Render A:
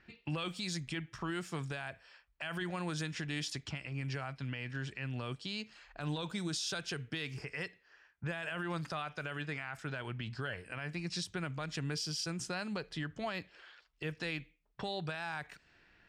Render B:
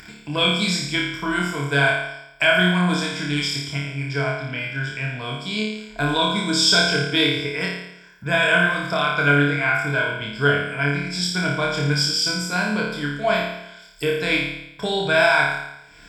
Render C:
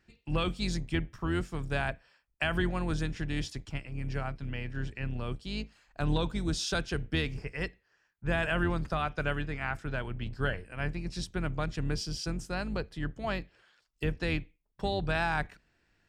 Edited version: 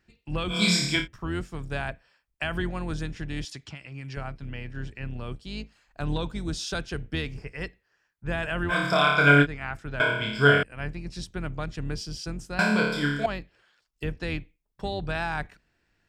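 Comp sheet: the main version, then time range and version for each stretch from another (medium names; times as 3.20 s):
C
0.56–1.00 s: from B, crossfade 0.16 s
3.45–4.17 s: from A
8.71–9.44 s: from B, crossfade 0.06 s
10.00–10.63 s: from B
12.59–13.26 s: from B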